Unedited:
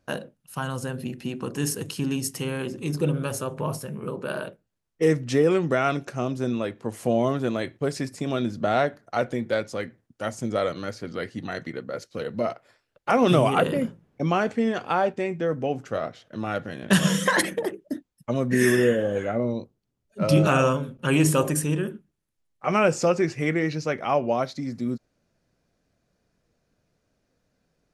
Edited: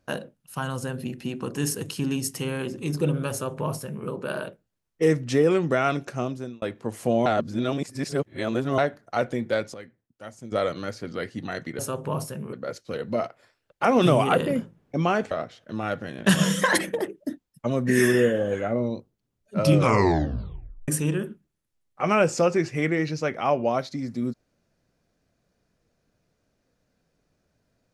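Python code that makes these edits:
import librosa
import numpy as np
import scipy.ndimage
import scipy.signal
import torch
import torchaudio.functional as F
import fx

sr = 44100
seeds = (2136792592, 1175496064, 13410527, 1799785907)

y = fx.edit(x, sr, fx.duplicate(start_s=3.32, length_s=0.74, to_s=11.79),
    fx.fade_out_span(start_s=6.19, length_s=0.43),
    fx.reverse_span(start_s=7.26, length_s=1.52),
    fx.clip_gain(start_s=9.74, length_s=0.78, db=-11.0),
    fx.cut(start_s=14.57, length_s=1.38),
    fx.tape_stop(start_s=20.35, length_s=1.17), tone=tone)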